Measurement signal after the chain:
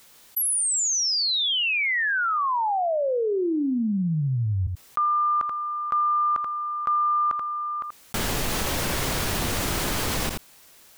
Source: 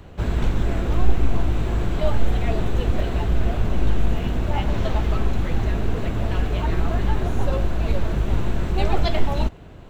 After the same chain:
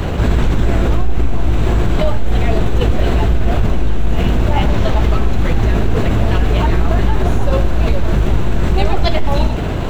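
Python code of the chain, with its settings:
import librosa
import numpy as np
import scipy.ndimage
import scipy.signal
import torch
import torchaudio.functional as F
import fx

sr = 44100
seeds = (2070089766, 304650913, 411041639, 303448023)

p1 = x + fx.echo_single(x, sr, ms=82, db=-17.0, dry=0)
p2 = fx.env_flatten(p1, sr, amount_pct=70)
y = F.gain(torch.from_numpy(p2), -1.0).numpy()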